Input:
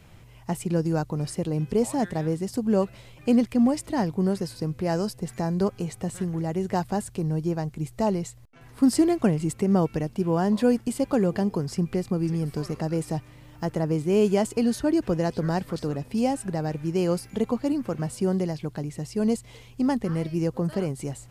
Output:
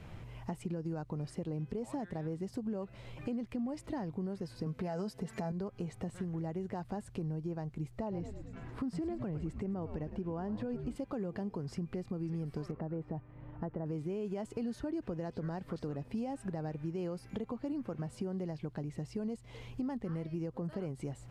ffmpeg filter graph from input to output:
ffmpeg -i in.wav -filter_complex "[0:a]asettb=1/sr,asplit=3[link_01][link_02][link_03];[link_01]atrim=end=4.664[link_04];[link_02]atrim=start=4.66:end=5.52,asetpts=PTS-STARTPTS,afade=type=in:duration=0.004:curve=qsin,afade=type=out:start_time=0.856:duration=0.004:curve=qsin,highpass=frequency=140:poles=1,acontrast=78,aecho=1:1:4.6:0.56,atrim=end_sample=37926[link_05];[link_03]atrim=start=5.516[link_06];[link_04][link_05]acrossfade=duration=0.004:curve1=hsin:curve2=qsin[link_07];[link_07][link_06]acrossfade=duration=0.004:curve1=qsin:curve2=hsin,asettb=1/sr,asplit=3[link_08][link_09][link_10];[link_08]atrim=end=7.984[link_11];[link_09]atrim=start=7.98:end=10.96,asetpts=PTS-STARTPTS,afade=type=in:duration=0.004:curve=qsin,afade=type=out:start_time=2.976:duration=0.004:curve=qsin,highshelf=frequency=5500:gain=-10.5,asplit=7[link_12][link_13][link_14][link_15][link_16][link_17][link_18];[link_13]adelay=107,afreqshift=-96,volume=-13dB[link_19];[link_14]adelay=214,afreqshift=-192,volume=-18.2dB[link_20];[link_15]adelay=321,afreqshift=-288,volume=-23.4dB[link_21];[link_16]adelay=428,afreqshift=-384,volume=-28.6dB[link_22];[link_17]adelay=535,afreqshift=-480,volume=-33.8dB[link_23];[link_18]adelay=642,afreqshift=-576,volume=-39dB[link_24];[link_12][link_19][link_20][link_21][link_22][link_23][link_24]amix=inputs=7:normalize=0,atrim=end_sample=131418[link_25];[link_10]atrim=start=10.956[link_26];[link_11][link_25]acrossfade=duration=0.004:curve1=hsin:curve2=qsin[link_27];[link_27][link_26]acrossfade=duration=0.004:curve1=qsin:curve2=hsin,asettb=1/sr,asplit=3[link_28][link_29][link_30];[link_28]atrim=end=12.714[link_31];[link_29]atrim=start=12.71:end=13.86,asetpts=PTS-STARTPTS,afade=type=in:duration=0.004:curve=qsin,afade=type=out:start_time=1.146:duration=0.004:curve=qsin,lowpass=1500,agate=range=-33dB:threshold=-46dB:ratio=3:release=100:detection=peak,acompressor=threshold=-30dB:ratio=1.5:attack=3.2:release=140:knee=1:detection=peak[link_32];[link_30]atrim=start=13.856[link_33];[link_31][link_32]acrossfade=duration=0.004:curve1=hsin:curve2=qsin[link_34];[link_34][link_33]acrossfade=duration=0.004:curve1=qsin:curve2=hsin,lowpass=frequency=2200:poles=1,alimiter=limit=-19dB:level=0:latency=1:release=111,acompressor=threshold=-42dB:ratio=3,volume=2.5dB" out.wav

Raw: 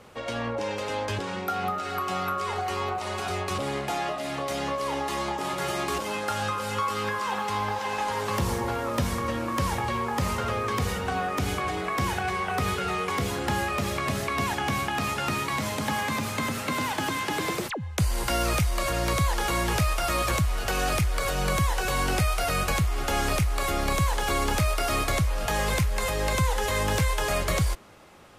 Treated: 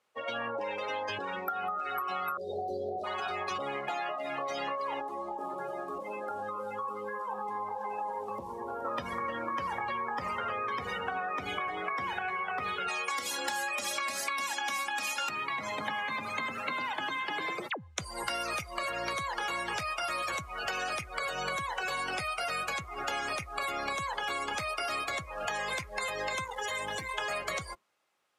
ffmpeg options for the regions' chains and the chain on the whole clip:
ffmpeg -i in.wav -filter_complex "[0:a]asettb=1/sr,asplit=3[link_01][link_02][link_03];[link_01]atrim=end=2.374[link_04];[link_02]atrim=start=2.37:end=3.04,asetpts=PTS-STARTPTS,afade=type=in:duration=0.004:curve=qsin,afade=type=out:start_time=0.666:duration=0.004:curve=qsin,equalizer=frequency=8000:width_type=o:width=1.6:gain=-11,aeval=exprs='0.126*sin(PI/2*1.41*val(0)/0.126)':channel_layout=same,asuperstop=centerf=1600:order=12:qfactor=0.51[link_05];[link_03]atrim=start=3.036[link_06];[link_04][link_05]acrossfade=duration=0.004:curve1=hsin:curve2=qsin[link_07];[link_07][link_06]acrossfade=duration=0.004:curve1=qsin:curve2=hsin,asettb=1/sr,asplit=3[link_08][link_09][link_10];[link_08]atrim=end=5.004[link_11];[link_09]atrim=start=5:end=8.85,asetpts=PTS-STARTPTS,afade=type=in:duration=0.004:curve=qsin,afade=type=out:start_time=3.846:duration=0.004:curve=qsin,acrossover=split=800|8000[link_12][link_13][link_14];[link_12]acompressor=threshold=-31dB:ratio=4[link_15];[link_13]acompressor=threshold=-43dB:ratio=4[link_16];[link_14]acompressor=threshold=-49dB:ratio=4[link_17];[link_15][link_16][link_17]amix=inputs=3:normalize=0,equalizer=frequency=120:width=2:gain=-6,aecho=1:1:423:0.355,atrim=end_sample=169785[link_18];[link_10]atrim=start=8.846[link_19];[link_11][link_18]acrossfade=duration=0.004:curve1=hsin:curve2=qsin[link_20];[link_20][link_19]acrossfade=duration=0.004:curve1=qsin:curve2=hsin,asettb=1/sr,asplit=3[link_21][link_22][link_23];[link_21]atrim=end=12.884[link_24];[link_22]atrim=start=12.88:end=15.29,asetpts=PTS-STARTPTS,afade=type=in:duration=0.004:curve=qsin,afade=type=out:start_time=2.406:duration=0.004:curve=qsin,bass=frequency=250:gain=-7,treble=frequency=4000:gain=8,aecho=1:1:3.6:0.63,atrim=end_sample=106281[link_25];[link_23]atrim=start=15.286[link_26];[link_24][link_25]acrossfade=duration=0.004:curve1=hsin:curve2=qsin[link_27];[link_27][link_26]acrossfade=duration=0.004:curve1=qsin:curve2=hsin,asettb=1/sr,asplit=3[link_28][link_29][link_30];[link_28]atrim=end=26.444[link_31];[link_29]atrim=start=26.44:end=27.14,asetpts=PTS-STARTPTS,afade=type=in:duration=0.004:curve=qsin,afade=type=out:start_time=0.696:duration=0.004:curve=qsin,highshelf=frequency=3900:gain=5,aeval=exprs='(tanh(20*val(0)+0.4)-tanh(0.4))/20':channel_layout=same[link_32];[link_30]atrim=start=27.136[link_33];[link_31][link_32]acrossfade=duration=0.004:curve1=hsin:curve2=qsin[link_34];[link_34][link_33]acrossfade=duration=0.004:curve1=qsin:curve2=hsin,afftdn=noise_reduction=26:noise_floor=-33,highpass=frequency=1200:poles=1,acompressor=threshold=-36dB:ratio=6,volume=5dB" out.wav

